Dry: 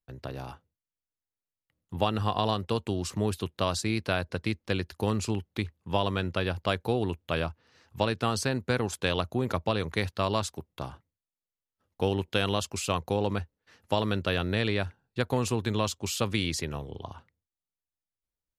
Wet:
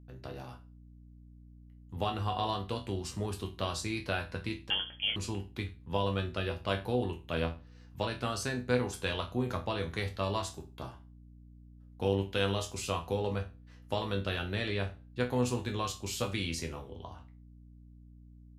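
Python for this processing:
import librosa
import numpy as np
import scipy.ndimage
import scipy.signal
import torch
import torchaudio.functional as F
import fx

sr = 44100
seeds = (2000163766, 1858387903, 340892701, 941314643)

y = fx.resonator_bank(x, sr, root=40, chord='minor', decay_s=0.3)
y = fx.freq_invert(y, sr, carrier_hz=3300, at=(4.7, 5.16))
y = fx.add_hum(y, sr, base_hz=60, snr_db=18)
y = F.gain(torch.from_numpy(y), 6.5).numpy()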